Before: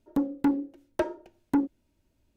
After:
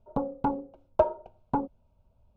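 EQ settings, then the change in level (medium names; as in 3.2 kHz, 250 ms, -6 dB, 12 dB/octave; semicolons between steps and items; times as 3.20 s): low-pass 1.7 kHz 12 dB/octave; static phaser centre 760 Hz, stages 4; +8.5 dB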